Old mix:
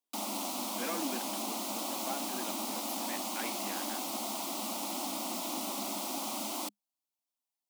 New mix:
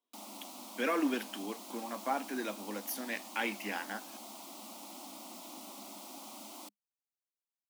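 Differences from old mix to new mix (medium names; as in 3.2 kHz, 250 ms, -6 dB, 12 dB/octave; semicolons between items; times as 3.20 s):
speech +7.0 dB; background -11.5 dB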